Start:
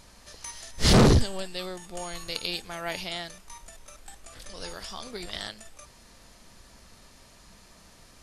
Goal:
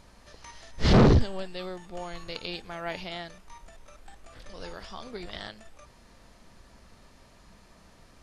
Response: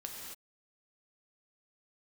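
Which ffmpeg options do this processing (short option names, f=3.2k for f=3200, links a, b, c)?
-filter_complex "[0:a]acrossover=split=6300[a][b];[b]acompressor=threshold=-58dB:ratio=4:attack=1:release=60[c];[a][c]amix=inputs=2:normalize=0,highshelf=f=3.2k:g=-9.5"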